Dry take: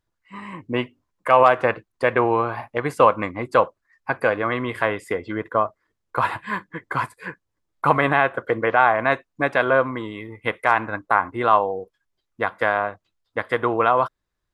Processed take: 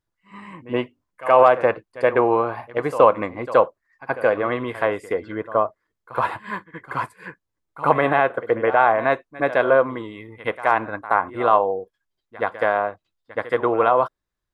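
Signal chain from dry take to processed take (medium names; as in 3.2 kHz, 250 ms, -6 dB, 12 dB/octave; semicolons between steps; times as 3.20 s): pre-echo 73 ms -14 dB; dynamic bell 520 Hz, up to +7 dB, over -30 dBFS, Q 0.71; trim -4 dB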